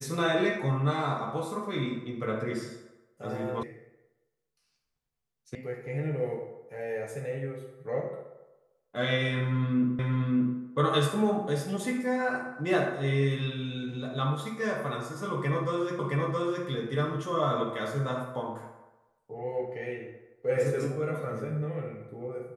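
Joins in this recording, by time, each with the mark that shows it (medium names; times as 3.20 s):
3.63 s: sound stops dead
5.55 s: sound stops dead
9.99 s: repeat of the last 0.58 s
15.99 s: repeat of the last 0.67 s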